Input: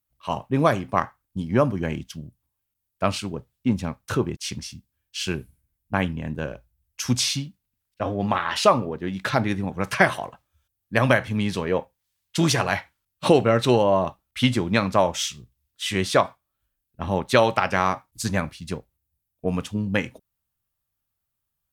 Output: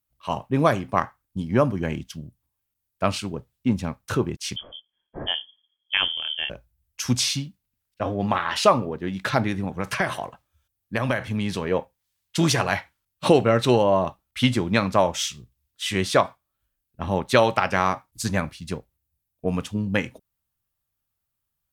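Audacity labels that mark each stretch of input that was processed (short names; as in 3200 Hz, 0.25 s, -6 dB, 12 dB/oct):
4.560000	6.500000	inverted band carrier 3300 Hz
9.490000	11.710000	compressor 2.5:1, threshold -21 dBFS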